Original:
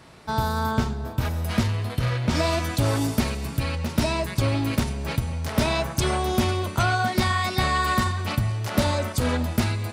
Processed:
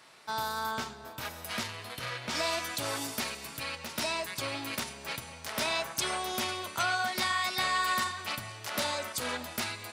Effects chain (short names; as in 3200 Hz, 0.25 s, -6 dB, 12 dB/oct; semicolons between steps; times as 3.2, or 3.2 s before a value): HPF 1300 Hz 6 dB/oct; gain -2 dB